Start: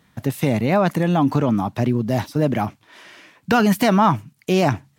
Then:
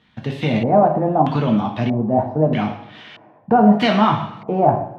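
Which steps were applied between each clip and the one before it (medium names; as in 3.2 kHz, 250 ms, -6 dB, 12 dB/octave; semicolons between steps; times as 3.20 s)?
two-slope reverb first 0.58 s, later 1.9 s, DRR 0.5 dB; LFO low-pass square 0.79 Hz 770–3300 Hz; trim -3 dB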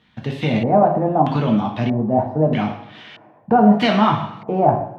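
de-hum 89.17 Hz, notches 21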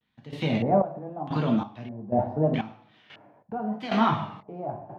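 vibrato 0.83 Hz 89 cents; trance gate "..xxx...xx." 92 bpm -12 dB; trim -6.5 dB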